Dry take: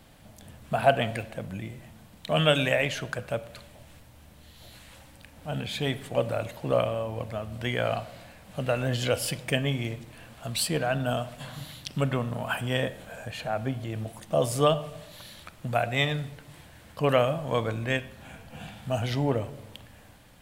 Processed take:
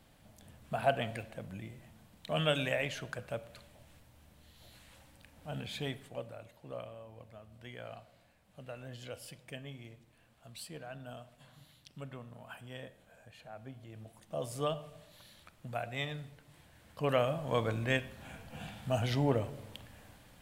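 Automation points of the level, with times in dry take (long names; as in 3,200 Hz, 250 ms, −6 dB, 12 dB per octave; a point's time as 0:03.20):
0:05.81 −8.5 dB
0:06.37 −19 dB
0:13.51 −19 dB
0:14.62 −12 dB
0:16.44 −12 dB
0:17.73 −3.5 dB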